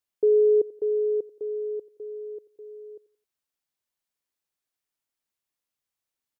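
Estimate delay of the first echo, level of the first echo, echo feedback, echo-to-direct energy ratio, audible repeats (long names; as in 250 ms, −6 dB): 88 ms, −20.5 dB, 34%, −20.0 dB, 2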